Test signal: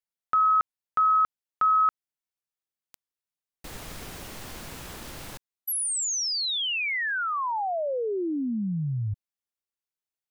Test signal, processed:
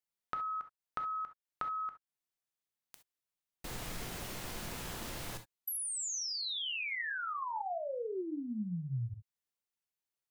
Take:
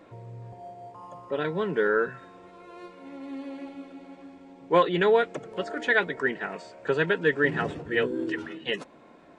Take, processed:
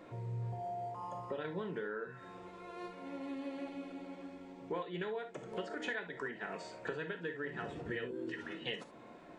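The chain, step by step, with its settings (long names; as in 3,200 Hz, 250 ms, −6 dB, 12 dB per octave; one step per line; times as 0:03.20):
downward compressor 20 to 1, threshold −35 dBFS
reverb whose tail is shaped and stops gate 90 ms flat, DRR 6 dB
level −2 dB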